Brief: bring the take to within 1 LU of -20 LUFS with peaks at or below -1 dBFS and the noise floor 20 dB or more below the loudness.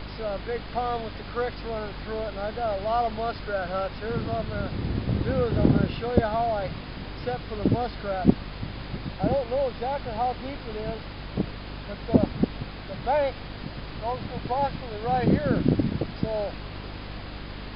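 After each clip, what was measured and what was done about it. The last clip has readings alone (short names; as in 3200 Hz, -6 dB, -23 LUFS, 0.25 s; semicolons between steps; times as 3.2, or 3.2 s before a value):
hum 50 Hz; harmonics up to 300 Hz; hum level -39 dBFS; noise floor -38 dBFS; noise floor target -48 dBFS; loudness -28.0 LUFS; peak -3.5 dBFS; loudness target -20.0 LUFS
-> de-hum 50 Hz, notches 6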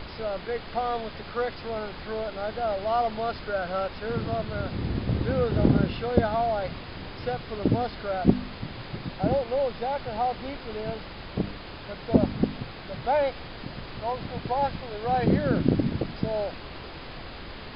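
hum none; noise floor -41 dBFS; noise floor target -49 dBFS
-> noise print and reduce 8 dB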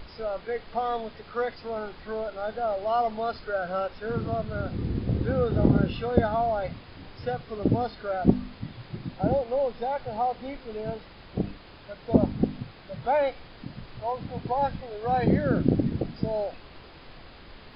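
noise floor -48 dBFS; noise floor target -49 dBFS
-> noise print and reduce 6 dB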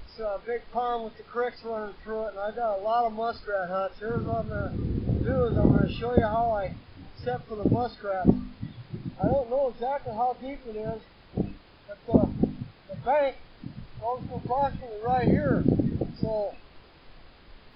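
noise floor -54 dBFS; loudness -28.5 LUFS; peak -4.5 dBFS; loudness target -20.0 LUFS
-> gain +8.5 dB; limiter -1 dBFS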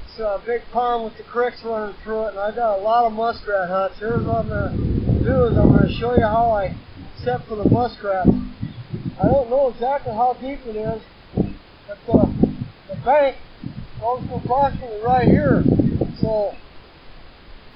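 loudness -20.0 LUFS; peak -1.0 dBFS; noise floor -45 dBFS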